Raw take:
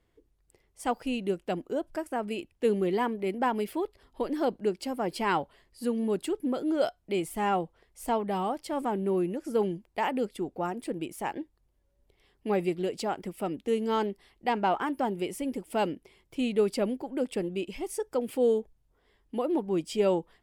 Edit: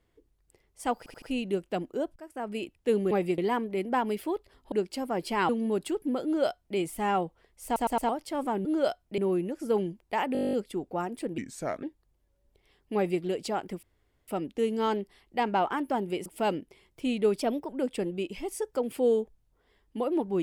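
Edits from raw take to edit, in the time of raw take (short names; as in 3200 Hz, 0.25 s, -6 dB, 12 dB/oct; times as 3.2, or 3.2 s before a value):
0.98 stutter 0.08 s, 4 plays
1.92–2.35 fade in, from -20.5 dB
4.21–4.61 cut
5.38–5.87 cut
6.62–7.15 copy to 9.03
8.03 stutter in place 0.11 s, 4 plays
10.18 stutter 0.02 s, 11 plays
11.03–11.37 speed 76%
12.49–12.76 copy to 2.87
13.37 insert room tone 0.45 s
15.35–15.6 cut
16.75–17.07 speed 113%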